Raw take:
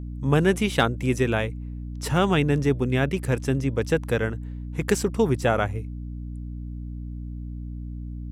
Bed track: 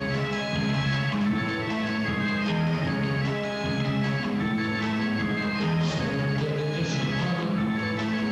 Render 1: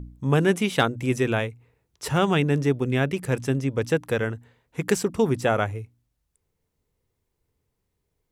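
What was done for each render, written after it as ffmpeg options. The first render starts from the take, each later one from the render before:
-af "bandreject=f=60:t=h:w=4,bandreject=f=120:t=h:w=4,bandreject=f=180:t=h:w=4,bandreject=f=240:t=h:w=4,bandreject=f=300:t=h:w=4"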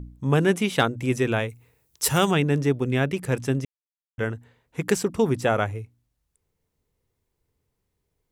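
-filter_complex "[0:a]asplit=3[s0][s1][s2];[s0]afade=t=out:st=1.48:d=0.02[s3];[s1]aemphasis=mode=production:type=75kf,afade=t=in:st=1.48:d=0.02,afade=t=out:st=2.3:d=0.02[s4];[s2]afade=t=in:st=2.3:d=0.02[s5];[s3][s4][s5]amix=inputs=3:normalize=0,asplit=3[s6][s7][s8];[s6]atrim=end=3.65,asetpts=PTS-STARTPTS,afade=t=out:st=3.646:d=0.004:c=hsin[s9];[s7]atrim=start=3.65:end=4.18,asetpts=PTS-STARTPTS,volume=0[s10];[s8]atrim=start=4.18,asetpts=PTS-STARTPTS,afade=t=in:d=0.004:c=hsin[s11];[s9][s10][s11]concat=n=3:v=0:a=1"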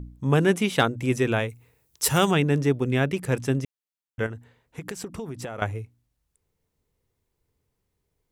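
-filter_complex "[0:a]asettb=1/sr,asplit=3[s0][s1][s2];[s0]atrim=end=4.264[s3];[s1]atrim=start=4.26:end=5.62,asetpts=PTS-STARTPTS,afade=t=in:d=0.004:c=qsin,afade=t=out:st=1.356:d=0.004:c=qsin,acompressor=threshold=0.0316:ratio=12:attack=3.2:release=140:knee=1:detection=peak[s4];[s2]atrim=start=5.616[s5];[s3][s4]acrossfade=d=0.004:c1=hsin:c2=qsin[s6];[s6][s5]acrossfade=d=0.004:c1=qsin:c2=hsin"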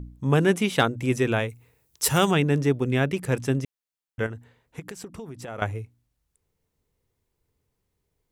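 -filter_complex "[0:a]asplit=3[s0][s1][s2];[s0]atrim=end=4.802[s3];[s1]atrim=start=4.798:end=5.482,asetpts=PTS-STARTPTS,volume=0.631[s4];[s2]atrim=start=5.478[s5];[s3][s4]acrossfade=d=0.004:c1=hsin:c2=hsin[s6];[s6][s5]acrossfade=d=0.004:c1=hsin:c2=hsin"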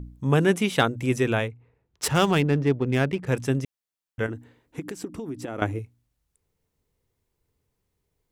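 -filter_complex "[0:a]asettb=1/sr,asplit=3[s0][s1][s2];[s0]atrim=end=1.484[s3];[s1]atrim=start=1.48:end=3.27,asetpts=PTS-STARTPTS,afade=t=in:d=0.004:c=qsin,afade=t=out:st=1.786:d=0.004:c=qsin,adynamicsmooth=sensitivity=4.5:basefreq=1900[s4];[s2]atrim=start=3.266[s5];[s3][s4]acrossfade=d=0.004:c1=hsin:c2=qsin[s6];[s6][s5]acrossfade=d=0.004:c1=qsin:c2=hsin,asettb=1/sr,asplit=3[s7][s8][s9];[s7]atrim=end=4.284[s10];[s8]atrim=start=4.28:end=5.79,asetpts=PTS-STARTPTS,afade=t=in:d=0.004:c=qsin,afade=t=out:st=1.506:d=0.004:c=qsin,equalizer=f=300:t=o:w=0.53:g=14.5[s11];[s9]atrim=start=5.786[s12];[s10][s11]acrossfade=d=0.004:c1=hsin:c2=qsin[s13];[s13][s12]acrossfade=d=0.004:c1=qsin:c2=hsin"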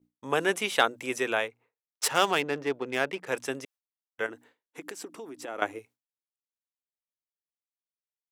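-af "highpass=520,agate=range=0.0224:threshold=0.00282:ratio=3:detection=peak"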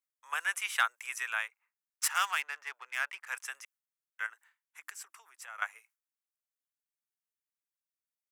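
-af "highpass=f=1200:w=0.5412,highpass=f=1200:w=1.3066,equalizer=f=3800:t=o:w=1:g=-9.5"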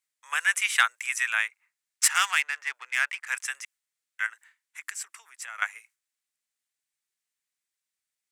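-af "equalizer=f=2000:t=o:w=1:g=9,equalizer=f=4000:t=o:w=1:g=5,equalizer=f=8000:t=o:w=1:g=10"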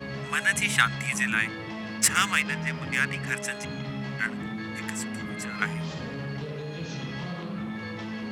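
-filter_complex "[1:a]volume=0.398[s0];[0:a][s0]amix=inputs=2:normalize=0"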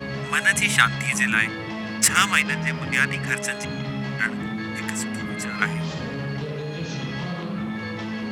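-af "volume=1.78,alimiter=limit=0.794:level=0:latency=1"

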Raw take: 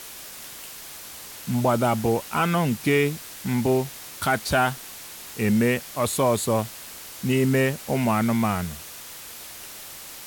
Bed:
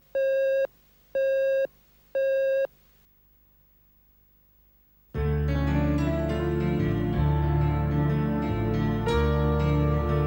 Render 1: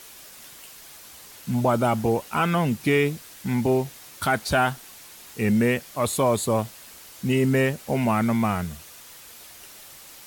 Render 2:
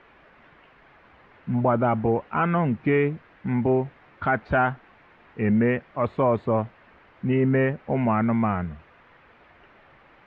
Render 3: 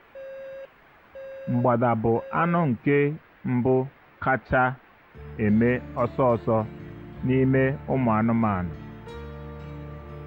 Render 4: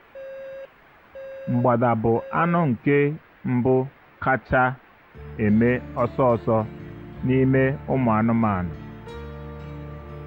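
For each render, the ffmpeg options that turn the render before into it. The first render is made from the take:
-af "afftdn=nr=6:nf=-40"
-af "lowpass=f=2100:w=0.5412,lowpass=f=2100:w=1.3066"
-filter_complex "[1:a]volume=0.178[s0];[0:a][s0]amix=inputs=2:normalize=0"
-af "volume=1.26"

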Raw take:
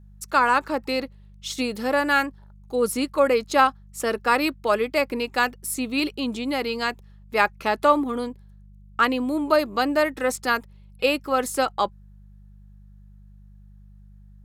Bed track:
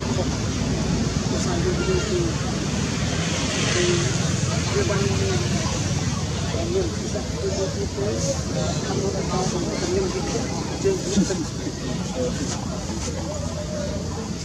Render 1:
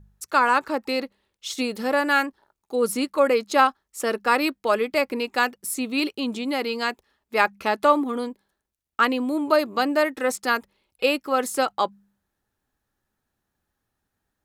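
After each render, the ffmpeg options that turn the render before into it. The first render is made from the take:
-af "bandreject=f=50:t=h:w=4,bandreject=f=100:t=h:w=4,bandreject=f=150:t=h:w=4,bandreject=f=200:t=h:w=4"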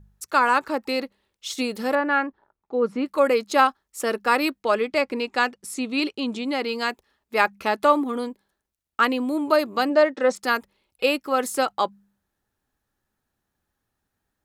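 -filter_complex "[0:a]asettb=1/sr,asplit=3[s0][s1][s2];[s0]atrim=end=1.954[s3];[s1]atrim=start=1.95:end=3.06,asetpts=PTS-STARTPTS,afade=t=in:d=0.004:c=qsin,afade=t=out:st=1.106:d=0.004:c=qsin,lowpass=1900[s4];[s2]atrim=start=3.056[s5];[s3][s4]acrossfade=d=0.004:c1=hsin:c2=qsin[s6];[s6][s5]acrossfade=d=0.004:c1=qsin:c2=hsin,asplit=3[s7][s8][s9];[s7]afade=t=out:st=4.62:d=0.02[s10];[s8]lowpass=7800,afade=t=in:st=4.62:d=0.02,afade=t=out:st=6.67:d=0.02[s11];[s9]afade=t=in:st=6.67:d=0.02[s12];[s10][s11][s12]amix=inputs=3:normalize=0,asplit=3[s13][s14][s15];[s13]afade=t=out:st=9.89:d=0.02[s16];[s14]highpass=190,equalizer=f=200:t=q:w=4:g=9,equalizer=f=560:t=q:w=4:g=7,equalizer=f=2400:t=q:w=4:g=-4,lowpass=f=6300:w=0.5412,lowpass=f=6300:w=1.3066,afade=t=in:st=9.89:d=0.02,afade=t=out:st=10.35:d=0.02[s17];[s15]afade=t=in:st=10.35:d=0.02[s18];[s16][s17][s18]amix=inputs=3:normalize=0"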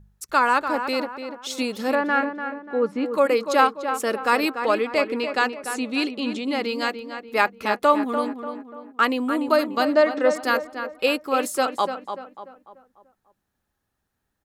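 -filter_complex "[0:a]asplit=2[s0][s1];[s1]adelay=293,lowpass=f=2400:p=1,volume=0.398,asplit=2[s2][s3];[s3]adelay=293,lowpass=f=2400:p=1,volume=0.43,asplit=2[s4][s5];[s5]adelay=293,lowpass=f=2400:p=1,volume=0.43,asplit=2[s6][s7];[s7]adelay=293,lowpass=f=2400:p=1,volume=0.43,asplit=2[s8][s9];[s9]adelay=293,lowpass=f=2400:p=1,volume=0.43[s10];[s0][s2][s4][s6][s8][s10]amix=inputs=6:normalize=0"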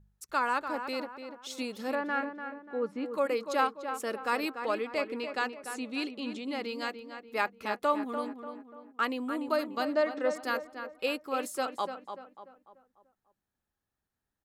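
-af "volume=0.316"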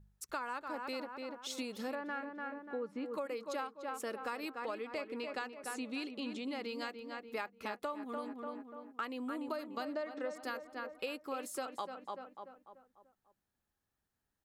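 -af "acompressor=threshold=0.0141:ratio=6"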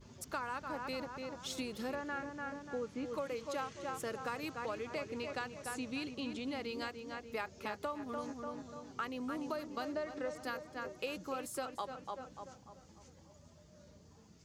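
-filter_complex "[1:a]volume=0.0224[s0];[0:a][s0]amix=inputs=2:normalize=0"

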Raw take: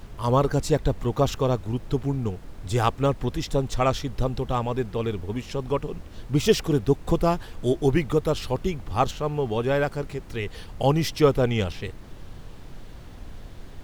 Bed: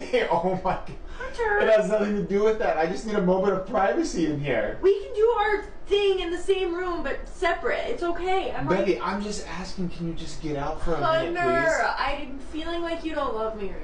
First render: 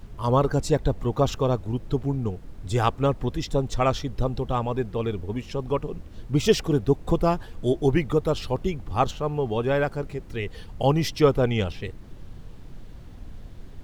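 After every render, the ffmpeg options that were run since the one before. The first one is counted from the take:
-af "afftdn=nr=6:nf=-42"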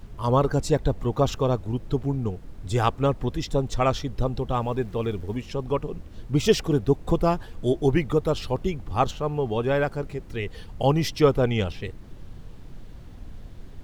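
-filter_complex "[0:a]asettb=1/sr,asplit=3[s0][s1][s2];[s0]atrim=end=4.554[s3];[s1]atrim=start=4.55:end=5.37,asetpts=PTS-STARTPTS,afade=t=in:d=0.004:c=qsin,afade=t=out:st=0.816:d=0.004:c=qsin,aeval=exprs='val(0)*gte(abs(val(0)),0.00398)':c=same[s4];[s2]atrim=start=5.366[s5];[s3][s4]acrossfade=d=0.004:c1=hsin:c2=qsin[s6];[s6][s5]acrossfade=d=0.004:c1=qsin:c2=hsin"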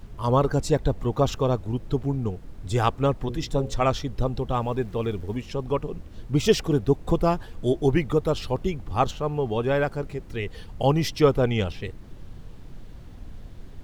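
-filter_complex "[0:a]asettb=1/sr,asplit=3[s0][s1][s2];[s0]atrim=end=3.174[s3];[s1]atrim=start=3.17:end=3.87,asetpts=PTS-STARTPTS,afade=t=in:d=0.004:c=qsin,afade=t=out:st=0.696:d=0.004:c=qsin,bandreject=f=60:t=h:w=6,bandreject=f=120:t=h:w=6,bandreject=f=180:t=h:w=6,bandreject=f=240:t=h:w=6,bandreject=f=300:t=h:w=6,bandreject=f=360:t=h:w=6,bandreject=f=420:t=h:w=6,bandreject=f=480:t=h:w=6,bandreject=f=540:t=h:w=6[s4];[s2]atrim=start=3.866[s5];[s3][s4]acrossfade=d=0.004:c1=hsin:c2=qsin[s6];[s6][s5]acrossfade=d=0.004:c1=qsin:c2=hsin"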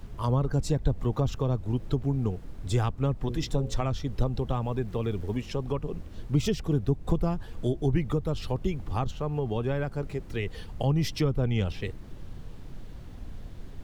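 -filter_complex "[0:a]acrossover=split=220[s0][s1];[s1]acompressor=threshold=0.0355:ratio=10[s2];[s0][s2]amix=inputs=2:normalize=0"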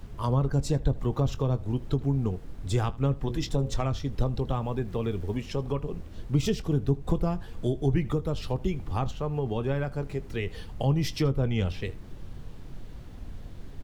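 -filter_complex "[0:a]asplit=2[s0][s1];[s1]adelay=22,volume=0.2[s2];[s0][s2]amix=inputs=2:normalize=0,aecho=1:1:79:0.0841"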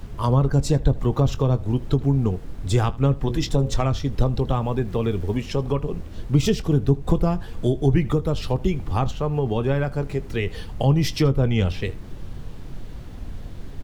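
-af "volume=2.11"

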